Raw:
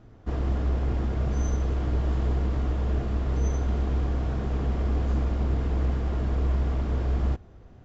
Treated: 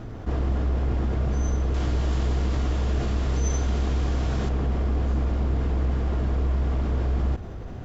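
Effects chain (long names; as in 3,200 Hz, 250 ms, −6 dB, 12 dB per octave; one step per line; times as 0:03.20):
0:01.74–0:04.49: high-shelf EQ 2,800 Hz +12 dB
envelope flattener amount 50%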